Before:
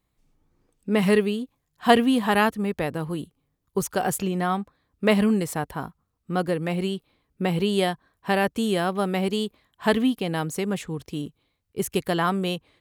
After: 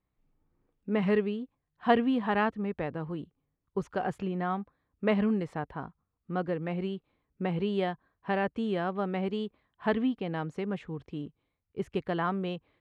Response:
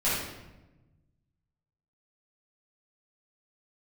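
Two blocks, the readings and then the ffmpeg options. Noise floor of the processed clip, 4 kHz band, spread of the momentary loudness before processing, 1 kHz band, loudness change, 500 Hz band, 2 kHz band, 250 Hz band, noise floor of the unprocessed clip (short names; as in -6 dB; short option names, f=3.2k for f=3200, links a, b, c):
-83 dBFS, -13.0 dB, 14 LU, -6.5 dB, -7.0 dB, -6.5 dB, -8.0 dB, -6.5 dB, -76 dBFS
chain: -af "lowpass=2.3k,volume=-6.5dB"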